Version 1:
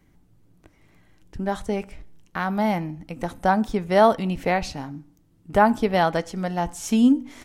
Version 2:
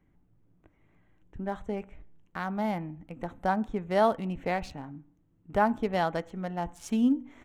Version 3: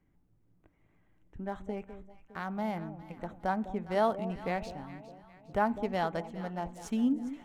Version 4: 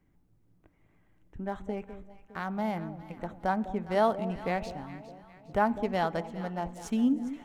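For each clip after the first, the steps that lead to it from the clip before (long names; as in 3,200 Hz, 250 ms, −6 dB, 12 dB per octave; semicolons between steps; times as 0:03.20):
adaptive Wiener filter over 9 samples; level −7.5 dB
delay that swaps between a low-pass and a high-pass 204 ms, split 800 Hz, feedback 66%, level −11.5 dB; level −4 dB
convolution reverb RT60 2.3 s, pre-delay 98 ms, DRR 24 dB; level +2.5 dB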